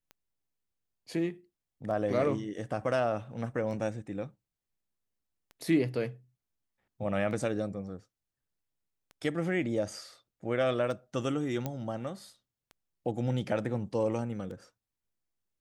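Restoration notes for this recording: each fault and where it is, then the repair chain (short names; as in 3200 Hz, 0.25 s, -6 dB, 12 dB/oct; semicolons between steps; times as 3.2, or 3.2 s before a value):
tick 33 1/3 rpm -33 dBFS
11.66 pop -19 dBFS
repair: de-click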